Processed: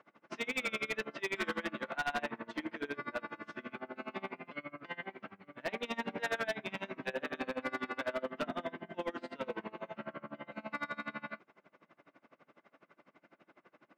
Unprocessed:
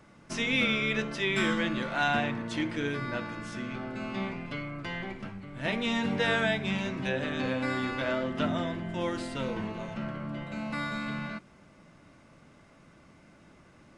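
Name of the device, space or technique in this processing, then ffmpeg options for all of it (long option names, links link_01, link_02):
helicopter radio: -af "highpass=350,lowpass=2600,aeval=exprs='val(0)*pow(10,-26*(0.5-0.5*cos(2*PI*12*n/s))/20)':channel_layout=same,asoftclip=type=hard:threshold=-31dB,volume=2dB"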